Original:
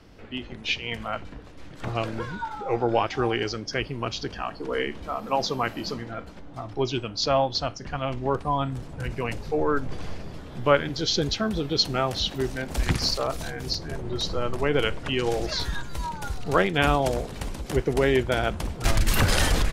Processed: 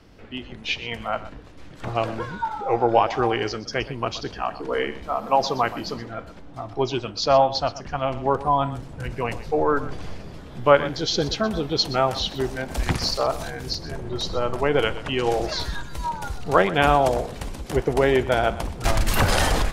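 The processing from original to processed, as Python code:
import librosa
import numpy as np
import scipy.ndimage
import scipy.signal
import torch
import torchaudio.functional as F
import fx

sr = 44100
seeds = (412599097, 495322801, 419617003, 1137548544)

p1 = fx.dynamic_eq(x, sr, hz=790.0, q=0.99, threshold_db=-38.0, ratio=4.0, max_db=7)
y = p1 + fx.echo_single(p1, sr, ms=123, db=-15.5, dry=0)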